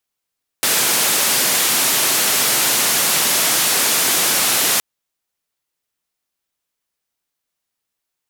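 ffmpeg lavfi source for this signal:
-f lavfi -i "anoisesrc=c=white:d=4.17:r=44100:seed=1,highpass=f=160,lowpass=f=14000,volume=-9.6dB"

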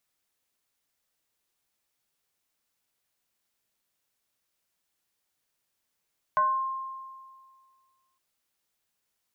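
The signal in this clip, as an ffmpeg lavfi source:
-f lavfi -i "aevalsrc='0.112*pow(10,-3*t/1.91)*sin(2*PI*1060*t+0.58*pow(10,-3*t/0.56)*sin(2*PI*0.42*1060*t))':d=1.81:s=44100"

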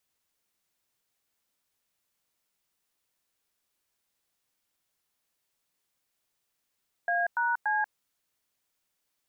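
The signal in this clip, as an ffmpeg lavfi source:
-f lavfi -i "aevalsrc='0.0447*clip(min(mod(t,0.288),0.187-mod(t,0.288))/0.002,0,1)*(eq(floor(t/0.288),0)*(sin(2*PI*697*mod(t,0.288))+sin(2*PI*1633*mod(t,0.288)))+eq(floor(t/0.288),1)*(sin(2*PI*941*mod(t,0.288))+sin(2*PI*1477*mod(t,0.288)))+eq(floor(t/0.288),2)*(sin(2*PI*852*mod(t,0.288))+sin(2*PI*1633*mod(t,0.288))))':d=0.864:s=44100"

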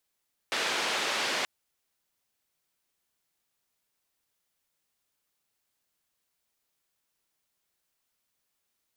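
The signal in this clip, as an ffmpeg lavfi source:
-f lavfi -i "anoisesrc=c=white:d=0.93:r=44100:seed=1,highpass=f=320,lowpass=f=3700,volume=-17.4dB"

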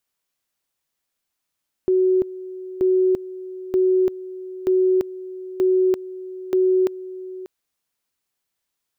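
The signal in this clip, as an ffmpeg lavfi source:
-f lavfi -i "aevalsrc='pow(10,(-14-16.5*gte(mod(t,0.93),0.34))/20)*sin(2*PI*372*t)':d=5.58:s=44100"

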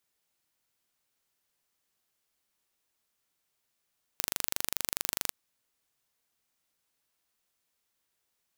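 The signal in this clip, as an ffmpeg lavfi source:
-f lavfi -i "aevalsrc='0.75*eq(mod(n,1785),0)':d=1.12:s=44100"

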